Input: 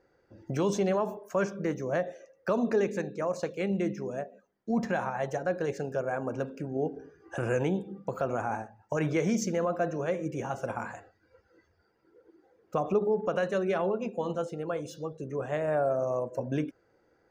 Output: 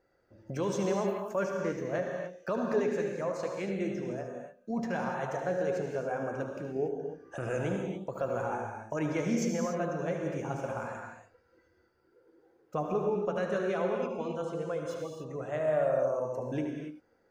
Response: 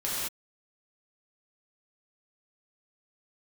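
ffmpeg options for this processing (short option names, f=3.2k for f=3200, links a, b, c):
-filter_complex "[0:a]flanger=delay=1.5:depth=6.7:regen=69:speed=0.13:shape=sinusoidal,asplit=2[a][b];[1:a]atrim=start_sample=2205,adelay=73[c];[b][c]afir=irnorm=-1:irlink=0,volume=-9.5dB[d];[a][d]amix=inputs=2:normalize=0"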